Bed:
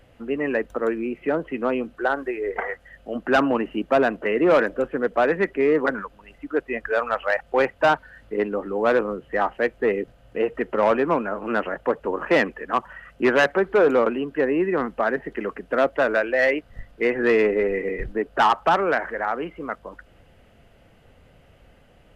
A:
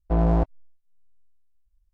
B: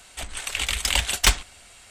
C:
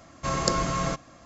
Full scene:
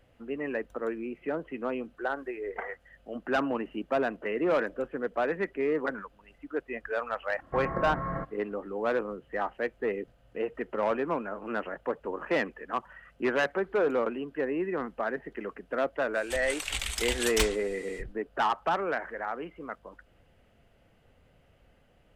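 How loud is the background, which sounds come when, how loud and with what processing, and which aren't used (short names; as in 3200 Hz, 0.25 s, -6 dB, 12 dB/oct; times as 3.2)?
bed -9 dB
7.29 add C -5 dB + elliptic low-pass 1900 Hz
16.13 add B -4.5 dB, fades 0.05 s + limiter -14.5 dBFS
not used: A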